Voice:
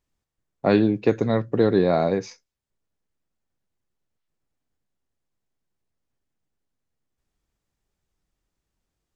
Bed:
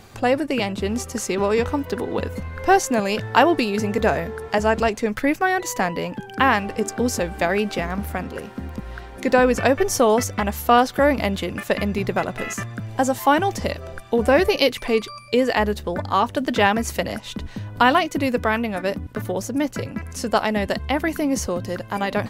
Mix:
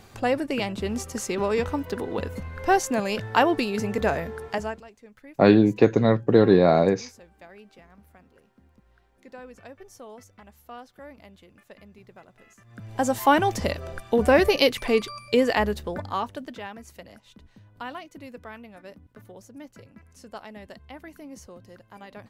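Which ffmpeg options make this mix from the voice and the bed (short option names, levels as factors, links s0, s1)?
-filter_complex "[0:a]adelay=4750,volume=1.33[s0];[1:a]volume=11.2,afade=t=out:st=4.43:d=0.39:silence=0.0749894,afade=t=in:st=12.64:d=0.54:silence=0.0530884,afade=t=out:st=15.39:d=1.22:silence=0.112202[s1];[s0][s1]amix=inputs=2:normalize=0"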